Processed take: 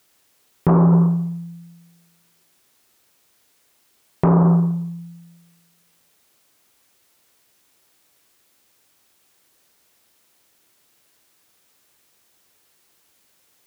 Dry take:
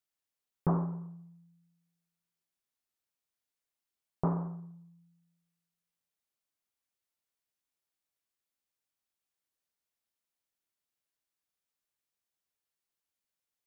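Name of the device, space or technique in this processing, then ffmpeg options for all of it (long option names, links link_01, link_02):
mastering chain: -af "highpass=58,equalizer=frequency=370:width_type=o:width=0.9:gain=3.5,acompressor=threshold=-33dB:ratio=2,asoftclip=type=tanh:threshold=-24.5dB,alimiter=level_in=35dB:limit=-1dB:release=50:level=0:latency=1,volume=-7dB"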